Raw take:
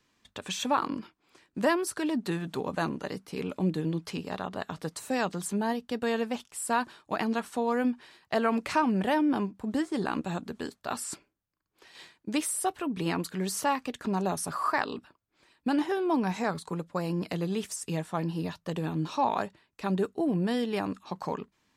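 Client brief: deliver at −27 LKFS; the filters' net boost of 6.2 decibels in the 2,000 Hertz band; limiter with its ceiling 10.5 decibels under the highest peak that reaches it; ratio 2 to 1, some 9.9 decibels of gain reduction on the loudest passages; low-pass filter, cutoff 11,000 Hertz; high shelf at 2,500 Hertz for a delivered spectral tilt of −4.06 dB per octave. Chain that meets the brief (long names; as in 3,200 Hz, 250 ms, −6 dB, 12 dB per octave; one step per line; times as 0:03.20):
low-pass filter 11,000 Hz
parametric band 2,000 Hz +6 dB
high-shelf EQ 2,500 Hz +4.5 dB
downward compressor 2 to 1, threshold −37 dBFS
level +11 dB
brickwall limiter −15.5 dBFS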